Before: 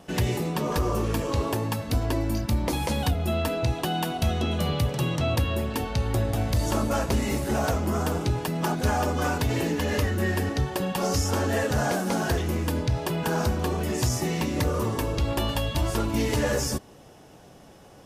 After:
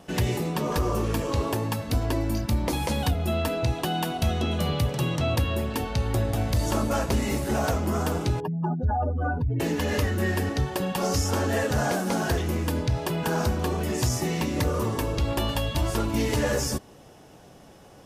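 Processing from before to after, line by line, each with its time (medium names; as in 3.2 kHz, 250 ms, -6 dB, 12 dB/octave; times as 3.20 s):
8.40–9.60 s: spectral contrast enhancement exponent 2.6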